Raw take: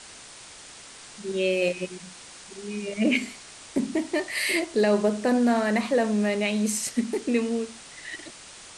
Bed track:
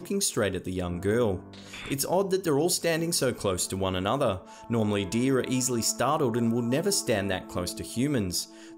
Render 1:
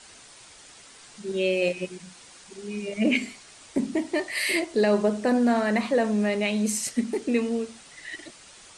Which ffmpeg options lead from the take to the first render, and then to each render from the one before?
-af "afftdn=nr=6:nf=-46"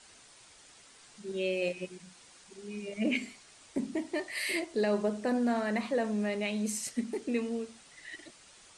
-af "volume=-7.5dB"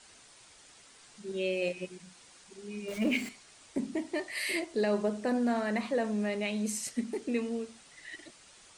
-filter_complex "[0:a]asettb=1/sr,asplit=3[a][b][c];[a]atrim=end=2.884[d];[b]atrim=start=2.88:end=3.29,asetpts=PTS-STARTPTS,afade=t=in:d=0.004:c=qsin,afade=t=out:st=0.406:d=0.004:c=qsin,aeval=exprs='val(0)+0.5*0.01*sgn(val(0))':c=same[e];[c]atrim=start=3.286[f];[d][e]acrossfade=d=0.004:c1=hsin:c2=qsin[g];[g][f]acrossfade=d=0.004:c1=qsin:c2=hsin"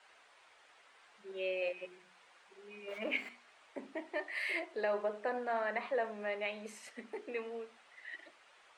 -filter_complex "[0:a]acrossover=split=460 2900:gain=0.0794 1 0.1[a][b][c];[a][b][c]amix=inputs=3:normalize=0,bandreject=f=60:t=h:w=6,bandreject=f=120:t=h:w=6,bandreject=f=180:t=h:w=6,bandreject=f=240:t=h:w=6,bandreject=f=300:t=h:w=6,bandreject=f=360:t=h:w=6,bandreject=f=420:t=h:w=6"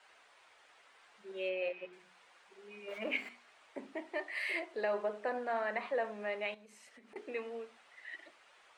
-filter_complex "[0:a]asettb=1/sr,asplit=3[a][b][c];[a]atrim=end=1.494[d];[b]atrim=start=1.49:end=1.93,asetpts=PTS-STARTPTS,afade=t=in:d=0.004:c=qsin,afade=t=out:st=0.436:d=0.004:c=qsin,lowpass=3.8k[e];[c]atrim=start=1.926[f];[d][e]acrossfade=d=0.004:c1=hsin:c2=qsin[g];[g][f]acrossfade=d=0.004:c1=qsin:c2=hsin,asettb=1/sr,asplit=3[h][i][j];[h]atrim=end=6.544[k];[i]atrim=start=6.54:end=7.16,asetpts=PTS-STARTPTS,afade=t=in:d=0.004:c=qsin,afade=t=out:st=0.616:d=0.004:c=qsin,acompressor=threshold=-55dB:ratio=10:attack=3.2:release=140:knee=1:detection=peak[l];[j]atrim=start=7.156[m];[k][l]acrossfade=d=0.004:c1=hsin:c2=qsin[n];[n][m]acrossfade=d=0.004:c1=qsin:c2=hsin"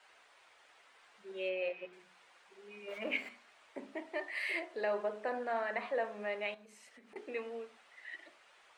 -af "bandreject=f=71.78:t=h:w=4,bandreject=f=143.56:t=h:w=4,bandreject=f=215.34:t=h:w=4,bandreject=f=287.12:t=h:w=4,bandreject=f=358.9:t=h:w=4,bandreject=f=430.68:t=h:w=4,bandreject=f=502.46:t=h:w=4,bandreject=f=574.24:t=h:w=4,bandreject=f=646.02:t=h:w=4,bandreject=f=717.8:t=h:w=4,bandreject=f=789.58:t=h:w=4,bandreject=f=861.36:t=h:w=4,bandreject=f=933.14:t=h:w=4,bandreject=f=1.00492k:t=h:w=4,bandreject=f=1.0767k:t=h:w=4,bandreject=f=1.14848k:t=h:w=4,bandreject=f=1.22026k:t=h:w=4,bandreject=f=1.29204k:t=h:w=4,bandreject=f=1.36382k:t=h:w=4,bandreject=f=1.4356k:t=h:w=4,bandreject=f=1.50738k:t=h:w=4,bandreject=f=1.57916k:t=h:w=4,bandreject=f=1.65094k:t=h:w=4,bandreject=f=1.72272k:t=h:w=4,bandreject=f=1.7945k:t=h:w=4"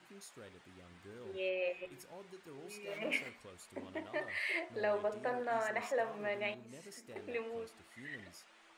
-filter_complex "[1:a]volume=-27.5dB[a];[0:a][a]amix=inputs=2:normalize=0"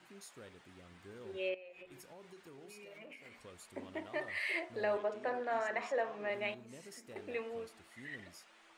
-filter_complex "[0:a]asettb=1/sr,asplit=3[a][b][c];[a]atrim=end=1.544[d];[b]atrim=start=1.54:end=3.34,asetpts=PTS-STARTPTS,afade=t=in:d=0.004:c=qsin,afade=t=out:st=1.796:d=0.004:c=qsin,acompressor=threshold=-49dB:ratio=16:attack=3.2:release=140:knee=1:detection=peak[e];[c]atrim=start=3.336[f];[d][e]acrossfade=d=0.004:c1=hsin:c2=qsin[g];[g][f]acrossfade=d=0.004:c1=qsin:c2=hsin,asettb=1/sr,asplit=3[h][i][j];[h]atrim=end=4.974[k];[i]atrim=start=4.97:end=6.3,asetpts=PTS-STARTPTS,afade=t=in:d=0.004:c=qsin,afade=t=out:st=1.326:d=0.004:c=qsin,acrossover=split=170 7400:gain=0.158 1 0.112[l][m][n];[l][m][n]amix=inputs=3:normalize=0[o];[j]atrim=start=6.296[p];[k][o]acrossfade=d=0.004:c1=hsin:c2=qsin[q];[q][p]acrossfade=d=0.004:c1=qsin:c2=hsin"

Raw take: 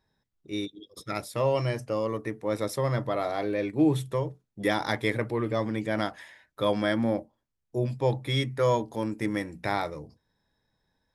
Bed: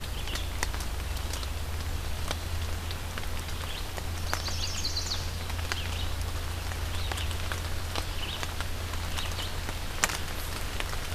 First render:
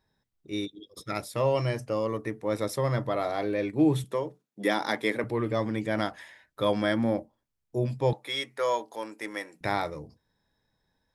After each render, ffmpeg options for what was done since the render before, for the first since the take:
-filter_complex "[0:a]asettb=1/sr,asplit=3[a][b][c];[a]atrim=end=4.044[d];[b]atrim=start=4.04:end=5.24,asetpts=PTS-STARTPTS,afade=t=in:d=0.004:c=qsin,afade=t=out:st=1.196:d=0.004:c=qsin,highpass=f=180:w=0.5412,highpass=f=180:w=1.3066[e];[c]atrim=start=5.236[f];[d][e]acrossfade=d=0.004:c1=hsin:c2=qsin[g];[g][f]acrossfade=d=0.004:c1=qsin:c2=hsin,asettb=1/sr,asplit=3[h][i][j];[h]atrim=end=8.134[k];[i]atrim=start=8.13:end=9.61,asetpts=PTS-STARTPTS,afade=t=in:d=0.004:c=qsin,afade=t=out:st=1.476:d=0.004:c=qsin,highpass=550[l];[j]atrim=start=9.606[m];[k][l]acrossfade=d=0.004:c1=hsin:c2=qsin[n];[n][m]acrossfade=d=0.004:c1=qsin:c2=hsin"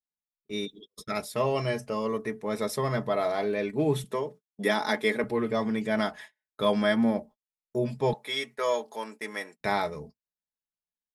-af "agate=range=-34dB:threshold=-45dB:ratio=16:detection=peak,aecho=1:1:4.7:0.67"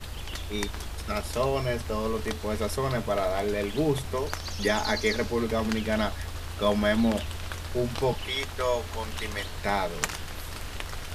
-filter_complex "[1:a]volume=-3dB[a];[0:a][a]amix=inputs=2:normalize=0"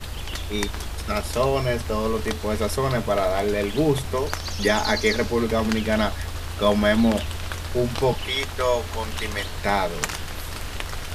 -af "volume=5dB,alimiter=limit=-2dB:level=0:latency=1"

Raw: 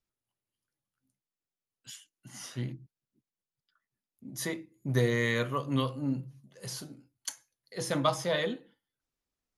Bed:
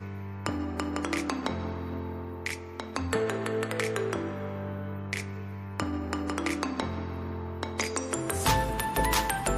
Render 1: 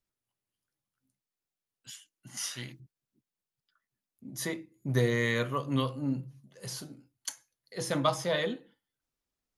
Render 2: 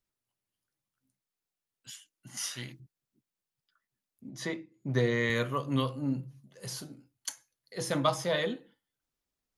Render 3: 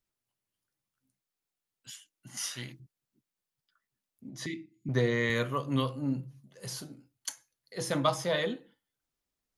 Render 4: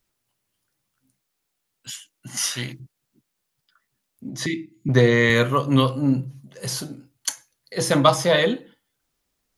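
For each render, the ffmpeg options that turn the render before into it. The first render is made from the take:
-filter_complex "[0:a]asettb=1/sr,asplit=3[a][b][c];[a]atrim=end=2.374[d];[b]atrim=start=2.37:end=2.8,asetpts=PTS-STARTPTS,afade=t=in:d=0.004:c=qsin,afade=t=out:st=0.426:d=0.004:c=qsin,tiltshelf=f=870:g=-9.5[e];[c]atrim=start=2.796[f];[d][e]acrossfade=d=0.004:c1=hsin:c2=qsin[g];[g][f]acrossfade=d=0.004:c1=qsin:c2=hsin"
-filter_complex "[0:a]asettb=1/sr,asplit=3[a][b][c];[a]atrim=end=4.294[d];[b]atrim=start=4.29:end=5.3,asetpts=PTS-STARTPTS,afade=t=in:d=0.004:c=qsin,afade=t=out:st=1.006:d=0.004:c=qsin,highpass=110,lowpass=5.3k[e];[c]atrim=start=5.296[f];[d][e]acrossfade=d=0.004:c1=hsin:c2=qsin[g];[g][f]acrossfade=d=0.004:c1=qsin:c2=hsin"
-filter_complex "[0:a]asettb=1/sr,asplit=3[a][b][c];[a]atrim=end=4.464[d];[b]atrim=start=4.46:end=4.89,asetpts=PTS-STARTPTS,afade=t=in:d=0.004:c=qsin,afade=t=out:st=0.426:d=0.004:c=qsin,asuperstop=centerf=840:order=12:qfactor=0.52[e];[c]atrim=start=4.886[f];[d][e]acrossfade=d=0.004:c1=hsin:c2=qsin[g];[g][f]acrossfade=d=0.004:c1=qsin:c2=hsin"
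-af "volume=11.5dB"

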